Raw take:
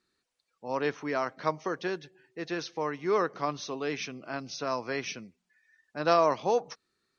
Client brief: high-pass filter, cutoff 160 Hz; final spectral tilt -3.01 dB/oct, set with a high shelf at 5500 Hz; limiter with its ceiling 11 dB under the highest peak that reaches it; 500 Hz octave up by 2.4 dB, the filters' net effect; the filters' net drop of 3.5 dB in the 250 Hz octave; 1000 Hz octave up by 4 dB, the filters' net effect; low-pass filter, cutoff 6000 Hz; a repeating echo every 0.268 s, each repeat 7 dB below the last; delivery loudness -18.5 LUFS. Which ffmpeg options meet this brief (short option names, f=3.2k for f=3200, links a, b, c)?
-af "highpass=160,lowpass=6k,equalizer=f=250:t=o:g=-7,equalizer=f=500:t=o:g=3.5,equalizer=f=1k:t=o:g=4,highshelf=f=5.5k:g=9,alimiter=limit=-19dB:level=0:latency=1,aecho=1:1:268|536|804|1072|1340:0.447|0.201|0.0905|0.0407|0.0183,volume=13.5dB"